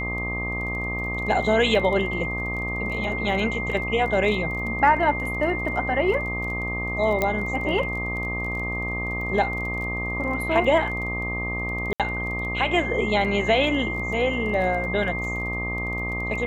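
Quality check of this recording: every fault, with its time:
buzz 60 Hz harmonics 21 -31 dBFS
crackle 18/s -32 dBFS
tone 2100 Hz -28 dBFS
7.22 pop -9 dBFS
11.93–12 gap 67 ms

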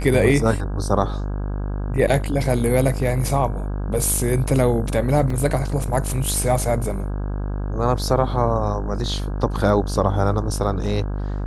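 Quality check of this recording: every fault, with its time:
buzz 50 Hz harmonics 33 -25 dBFS
5.3 gap 3.4 ms

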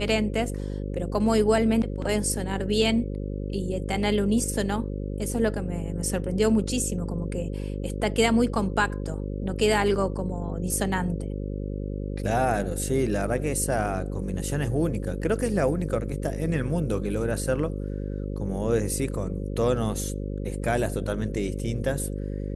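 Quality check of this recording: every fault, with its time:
buzz 50 Hz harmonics 11 -31 dBFS

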